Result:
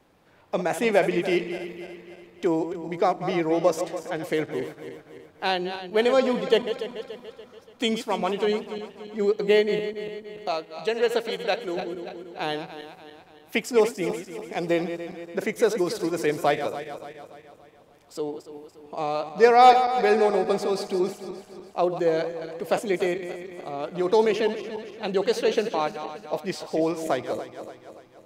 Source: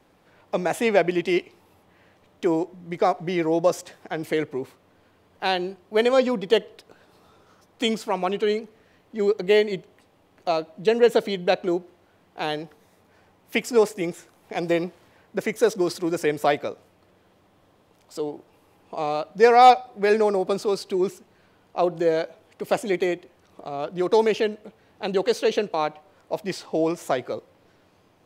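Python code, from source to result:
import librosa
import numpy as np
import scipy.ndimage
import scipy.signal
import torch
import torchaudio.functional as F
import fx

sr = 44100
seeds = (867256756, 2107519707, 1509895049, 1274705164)

y = fx.reverse_delay_fb(x, sr, ms=144, feedback_pct=69, wet_db=-10)
y = fx.low_shelf(y, sr, hz=430.0, db=-10.5, at=(10.48, 11.77))
y = F.gain(torch.from_numpy(y), -1.5).numpy()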